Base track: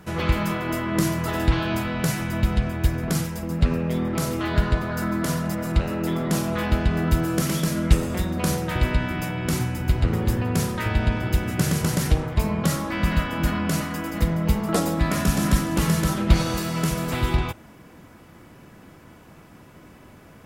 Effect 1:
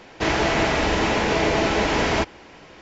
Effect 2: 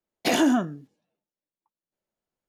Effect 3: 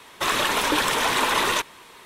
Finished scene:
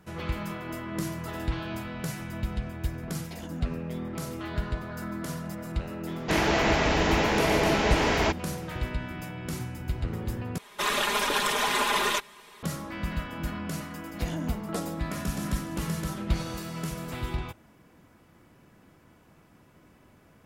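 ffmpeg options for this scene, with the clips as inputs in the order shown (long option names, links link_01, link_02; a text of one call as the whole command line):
ffmpeg -i bed.wav -i cue0.wav -i cue1.wav -i cue2.wav -filter_complex "[2:a]asplit=2[link_01][link_02];[0:a]volume=-10dB[link_03];[link_01]acompressor=threshold=-30dB:ratio=6:attack=3.2:release=140:knee=1:detection=peak[link_04];[3:a]aecho=1:1:4.9:0.78[link_05];[link_03]asplit=2[link_06][link_07];[link_06]atrim=end=10.584[link_08];[link_05]atrim=end=2.05,asetpts=PTS-STARTPTS,volume=-6dB[link_09];[link_07]atrim=start=12.626[link_10];[link_04]atrim=end=2.48,asetpts=PTS-STARTPTS,volume=-11.5dB,afade=type=in:duration=0.004:curve=hsin,afade=type=out:start_time=2.476:duration=0.004:curve=hsin,adelay=3060[link_11];[1:a]atrim=end=2.81,asetpts=PTS-STARTPTS,volume=-3.5dB,afade=type=in:duration=0.004:curve=hsin,afade=type=out:start_time=2.806:duration=0.004:curve=hsin,adelay=6080[link_12];[link_02]atrim=end=2.48,asetpts=PTS-STARTPTS,volume=-16.5dB,afade=type=in:duration=0.004:curve=hsin,afade=type=out:start_time=2.476:duration=0.004:curve=hsin,adelay=13940[link_13];[link_08][link_09]acrossfade=duration=0.004:curve1=hsin:curve2=hsin[link_14];[link_14][link_10]acrossfade=duration=0.004:curve1=hsin:curve2=hsin[link_15];[link_15][link_11][link_12][link_13]amix=inputs=4:normalize=0" out.wav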